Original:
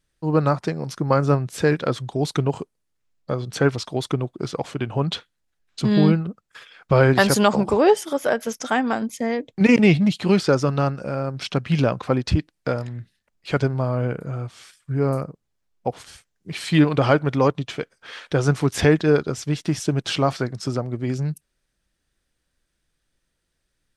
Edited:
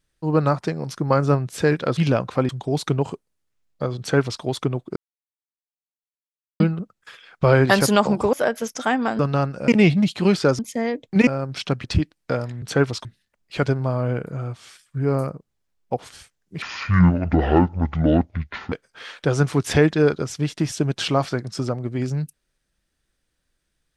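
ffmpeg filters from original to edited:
-filter_complex "[0:a]asplit=15[a][b][c][d][e][f][g][h][i][j][k][l][m][n][o];[a]atrim=end=1.972[p];[b]atrim=start=11.688:end=12.212[q];[c]atrim=start=1.968:end=4.44,asetpts=PTS-STARTPTS,afade=t=out:st=2.468:d=0.004:c=hsin[r];[d]atrim=start=4.44:end=6.08,asetpts=PTS-STARTPTS,volume=0[s];[e]atrim=start=6.08:end=7.812,asetpts=PTS-STARTPTS,afade=t=in:d=0.004:c=hsin[t];[f]atrim=start=8.178:end=9.042[u];[g]atrim=start=10.628:end=11.122[v];[h]atrim=start=9.718:end=10.632[w];[i]atrim=start=9.038:end=9.722[x];[j]atrim=start=11.118:end=11.692[y];[k]atrim=start=12.208:end=12.992[z];[l]atrim=start=3.468:end=3.902[aa];[m]atrim=start=12.988:end=16.564[ab];[n]atrim=start=16.56:end=17.8,asetpts=PTS-STARTPTS,asetrate=26019,aresample=44100[ac];[o]atrim=start=17.796[ad];[p][q]acrossfade=d=0.004:c1=hsin:c2=hsin[ae];[r][s][t]concat=n=3:v=0:a=1[af];[ae][af]acrossfade=d=0.004:c1=hsin:c2=hsin[ag];[ag][u]acrossfade=d=0.004:c1=hsin:c2=hsin[ah];[ah][v]acrossfade=d=0.004:c1=hsin:c2=hsin[ai];[ai][w]acrossfade=d=0.004:c1=hsin:c2=hsin[aj];[aj][x]acrossfade=d=0.004:c1=hsin:c2=hsin[ak];[ak][y]acrossfade=d=0.004:c1=hsin:c2=hsin[al];[al][z]acrossfade=d=0.004:c1=hsin:c2=hsin[am];[am][aa]acrossfade=d=0.004:c1=hsin:c2=hsin[an];[an][ab]acrossfade=d=0.004:c1=hsin:c2=hsin[ao];[ao][ac]acrossfade=d=0.004:c1=hsin:c2=hsin[ap];[ap][ad]acrossfade=d=0.004:c1=hsin:c2=hsin"

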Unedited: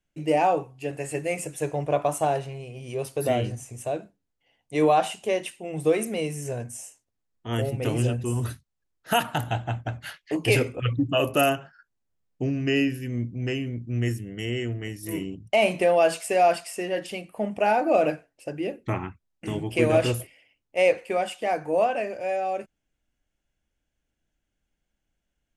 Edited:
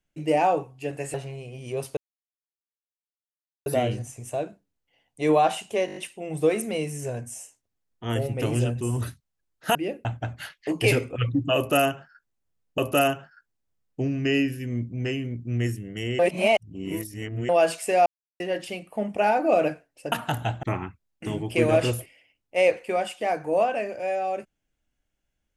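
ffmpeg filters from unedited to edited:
-filter_complex "[0:a]asplit=17[a][b][c][d][e][f][g][h][i][j][k][l][m][n][o][p][q];[a]atrim=end=1.142[r];[b]atrim=start=2.358:end=3.19,asetpts=PTS-STARTPTS,afade=t=out:st=0.828:d=0.004:c=hsin,apad=pad_dur=1.69[s];[c]atrim=start=3.19:end=5.412,asetpts=PTS-STARTPTS,afade=t=in:d=0.004:c=hsin[t];[d]atrim=start=5.388:end=5.412[u];[e]atrim=start=5.388:end=5.412[v];[f]atrim=start=5.388:end=5.412[w];[g]atrim=start=5.388:end=5.412[x];[h]atrim=start=5.388:end=9.182[y];[i]atrim=start=18.538:end=18.842[z];[j]atrim=start=9.688:end=12.422[aa];[k]atrim=start=11.198:end=14.612[ab];[l]atrim=start=14.608:end=15.912,asetpts=PTS-STARTPTS,areverse[ac];[m]atrim=start=15.908:end=16.48,asetpts=PTS-STARTPTS,afade=t=out:st=0.568:d=0.004:c=hsin[ad];[n]atrim=start=16.48:end=16.82,asetpts=PTS-STARTPTS,volume=0[ae];[o]atrim=start=16.82:end=18.542,asetpts=PTS-STARTPTS,afade=t=in:d=0.004:c=hsin[af];[p]atrim=start=9.178:end=9.692[ag];[q]atrim=start=18.838[ah];[s][t]concat=n=2:v=0:a=1[ai];[r][ai]acrossfade=d=0.004:c1=hsin:c2=hsin[aj];[aj][u]acrossfade=d=0.004:c1=hsin:c2=hsin[ak];[ak][v]acrossfade=d=0.004:c1=hsin:c2=hsin[al];[al][w]acrossfade=d=0.004:c1=hsin:c2=hsin[am];[am][x]acrossfade=d=0.004:c1=hsin:c2=hsin[an];[an][y]acrossfade=d=0.004:c1=hsin:c2=hsin[ao];[ao][z]acrossfade=d=0.004:c1=hsin:c2=hsin[ap];[ap][aa]acrossfade=d=0.004:c1=hsin:c2=hsin[aq];[aq][ab]acrossfade=d=0.004:c1=hsin:c2=hsin[ar];[ar][ac]acrossfade=d=0.004:c1=hsin:c2=hsin[as];[ad][ae][af]concat=n=3:v=0:a=1[at];[as][at]acrossfade=d=0.004:c1=hsin:c2=hsin[au];[au][ag]acrossfade=d=0.004:c1=hsin:c2=hsin[av];[av][ah]acrossfade=d=0.004:c1=hsin:c2=hsin"

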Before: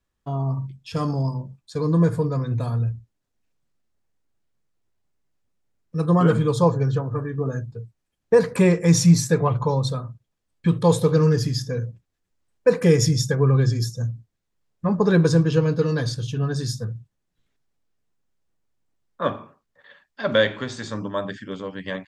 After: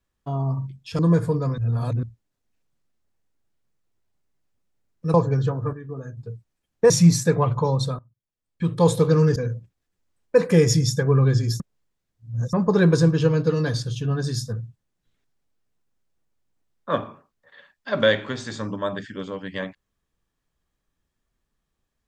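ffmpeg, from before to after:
-filter_complex "[0:a]asplit=12[a][b][c][d][e][f][g][h][i][j][k][l];[a]atrim=end=0.992[m];[b]atrim=start=1.888:end=2.482[n];[c]atrim=start=2.478:end=2.932,asetpts=PTS-STARTPTS,areverse[o];[d]atrim=start=2.928:end=6.042[p];[e]atrim=start=6.628:end=7.222[q];[f]atrim=start=7.218:end=7.662,asetpts=PTS-STARTPTS,volume=-8.5dB[r];[g]atrim=start=7.658:end=8.392[s];[h]atrim=start=8.938:end=10.03,asetpts=PTS-STARTPTS,afade=t=out:st=1.088:d=0.004:c=hsin:silence=0.1[t];[i]atrim=start=10.03:end=11.402,asetpts=PTS-STARTPTS,afade=t=in:d=0.87:c=qua:silence=0.1[u];[j]atrim=start=11.678:end=13.922[v];[k]atrim=start=13.918:end=14.852,asetpts=PTS-STARTPTS,areverse[w];[l]atrim=start=14.848[x];[m][n]acrossfade=d=0.004:c1=hsin:c2=hsin[y];[y][o]acrossfade=d=0.004:c1=hsin:c2=hsin[z];[z][p]acrossfade=d=0.004:c1=hsin:c2=hsin[aa];[aa][q]acrossfade=d=0.004:c1=hsin:c2=hsin[ab];[ab][r]acrossfade=d=0.004:c1=hsin:c2=hsin[ac];[ac][s]acrossfade=d=0.004:c1=hsin:c2=hsin[ad];[t][u]concat=n=2:v=0:a=1[ae];[ad][ae]acrossfade=d=0.004:c1=hsin:c2=hsin[af];[af][v]acrossfade=d=0.004:c1=hsin:c2=hsin[ag];[ag][w]acrossfade=d=0.004:c1=hsin:c2=hsin[ah];[ah][x]acrossfade=d=0.004:c1=hsin:c2=hsin"

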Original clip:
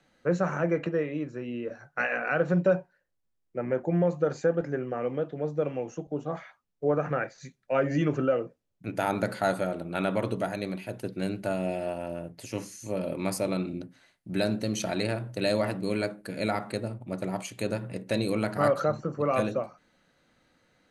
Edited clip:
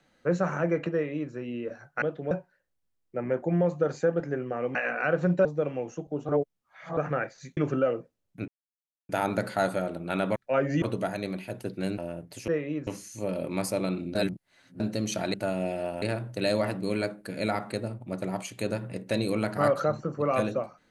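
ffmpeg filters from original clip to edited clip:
-filter_complex "[0:a]asplit=18[a][b][c][d][e][f][g][h][i][j][k][l][m][n][o][p][q][r];[a]atrim=end=2.022[s];[b]atrim=start=5.158:end=5.452[t];[c]atrim=start=2.718:end=5.162[u];[d]atrim=start=2.018:end=2.722[v];[e]atrim=start=5.448:end=6.292[w];[f]atrim=start=6.288:end=6.972,asetpts=PTS-STARTPTS,areverse[x];[g]atrim=start=6.968:end=7.572[y];[h]atrim=start=8.028:end=8.94,asetpts=PTS-STARTPTS,afade=t=out:st=0.908:d=0.004:c=hsin,apad=pad_dur=0.61[z];[i]atrim=start=8.94:end=10.212,asetpts=PTS-STARTPTS,afade=t=in:d=0.004:c=hsin[aa];[j]atrim=start=7.568:end=8.032[ab];[k]atrim=start=10.208:end=11.372[ac];[l]atrim=start=12.048:end=12.552[ad];[m]atrim=start=0.928:end=1.322[ae];[n]atrim=start=12.548:end=13.832[af];[o]atrim=start=13.828:end=14.482,asetpts=PTS-STARTPTS,areverse[ag];[p]atrim=start=14.478:end=15.022[ah];[q]atrim=start=11.368:end=12.052[ai];[r]atrim=start=15.018[aj];[s][t]acrossfade=d=0.004:c1=hsin:c2=hsin[ak];[ak][u]acrossfade=d=0.004:c1=hsin:c2=hsin[al];[al][v]acrossfade=d=0.004:c1=hsin:c2=hsin[am];[am][w]acrossfade=d=0.004:c1=hsin:c2=hsin[an];[an][x]acrossfade=d=0.004:c1=hsin:c2=hsin[ao];[ao][y]acrossfade=d=0.004:c1=hsin:c2=hsin[ap];[z][aa]concat=n=2:v=0:a=1[aq];[ap][aq]acrossfade=d=0.004:c1=hsin:c2=hsin[ar];[ar][ab]acrossfade=d=0.004:c1=hsin:c2=hsin[as];[as][ac]acrossfade=d=0.004:c1=hsin:c2=hsin[at];[at][ad]acrossfade=d=0.004:c1=hsin:c2=hsin[au];[au][ae]acrossfade=d=0.004:c1=hsin:c2=hsin[av];[av][af]acrossfade=d=0.004:c1=hsin:c2=hsin[aw];[aw][ag]acrossfade=d=0.004:c1=hsin:c2=hsin[ax];[ax][ah]acrossfade=d=0.004:c1=hsin:c2=hsin[ay];[ay][ai]acrossfade=d=0.004:c1=hsin:c2=hsin[az];[az][aj]acrossfade=d=0.004:c1=hsin:c2=hsin"

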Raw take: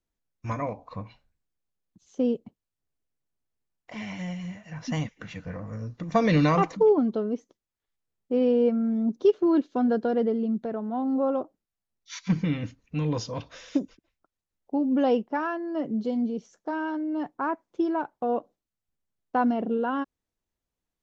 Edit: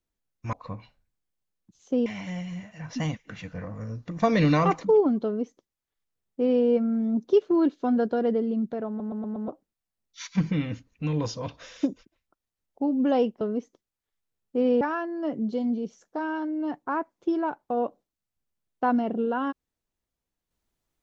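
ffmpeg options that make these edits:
-filter_complex "[0:a]asplit=10[a][b][c][d][e][f][g][h][i][j];[a]atrim=end=0.532[k];[b]atrim=start=0.798:end=2.332[l];[c]atrim=start=3.978:end=10.922[m];[d]atrim=start=10.798:end=10.922[n];[e]atrim=start=10.798:end=10.922[o];[f]atrim=start=10.798:end=10.922[p];[g]atrim=start=10.798:end=10.922[q];[h]atrim=start=11.398:end=15.332[r];[i]atrim=start=7.168:end=8.572[s];[j]atrim=start=15.328[t];[k][l]acrossfade=d=0.004:c1=hsin:c2=hsin[u];[u][m]acrossfade=d=0.004:c1=hsin:c2=hsin[v];[v][n]acrossfade=d=0.004:c1=hsin:c2=hsin[w];[w][o]acrossfade=d=0.004:c1=hsin:c2=hsin[x];[x][p]acrossfade=d=0.004:c1=hsin:c2=hsin[y];[y][q]acrossfade=d=0.004:c1=hsin:c2=hsin[z];[z][r]acrossfade=d=0.004:c1=hsin:c2=hsin[aa];[aa][s]acrossfade=d=0.004:c1=hsin:c2=hsin[ab];[ab][t]acrossfade=d=0.004:c1=hsin:c2=hsin"

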